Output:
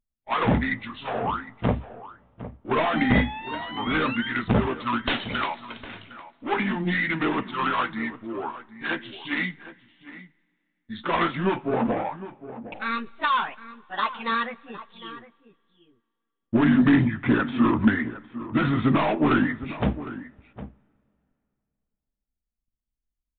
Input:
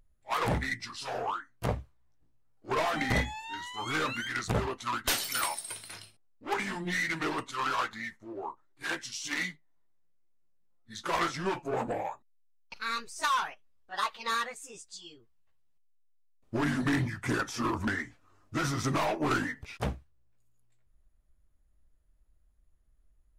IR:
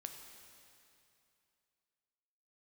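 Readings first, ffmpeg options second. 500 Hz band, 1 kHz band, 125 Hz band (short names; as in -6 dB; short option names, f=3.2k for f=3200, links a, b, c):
+7.0 dB, +5.5 dB, +7.5 dB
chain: -filter_complex "[0:a]agate=range=-26dB:threshold=-57dB:ratio=16:detection=peak,equalizer=f=230:t=o:w=0.7:g=10.5,asplit=2[a][b];[b]adelay=758,volume=-14dB,highshelf=f=4k:g=-17.1[c];[a][c]amix=inputs=2:normalize=0,asplit=2[d][e];[1:a]atrim=start_sample=2205[f];[e][f]afir=irnorm=-1:irlink=0,volume=-15dB[g];[d][g]amix=inputs=2:normalize=0,aresample=8000,aresample=44100,volume=4.5dB"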